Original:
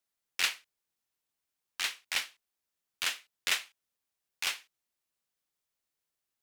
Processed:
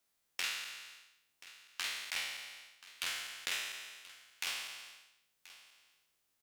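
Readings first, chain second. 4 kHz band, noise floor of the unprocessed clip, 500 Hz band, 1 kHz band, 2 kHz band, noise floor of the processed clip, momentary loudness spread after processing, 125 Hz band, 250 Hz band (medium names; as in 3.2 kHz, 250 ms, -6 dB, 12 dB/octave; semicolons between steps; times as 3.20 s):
-4.5 dB, under -85 dBFS, -4.0 dB, -4.5 dB, -4.5 dB, -80 dBFS, 19 LU, no reading, -4.0 dB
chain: spectral sustain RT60 0.81 s; compression 2.5:1, threshold -47 dBFS, peak gain reduction 16.5 dB; delay 1031 ms -18 dB; trim +4.5 dB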